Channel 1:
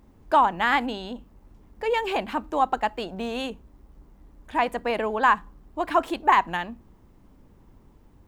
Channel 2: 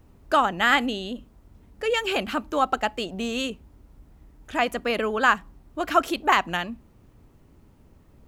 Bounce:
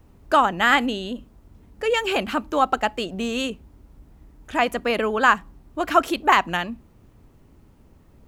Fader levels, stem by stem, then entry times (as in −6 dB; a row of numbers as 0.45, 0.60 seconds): −12.0, +1.5 decibels; 0.00, 0.00 seconds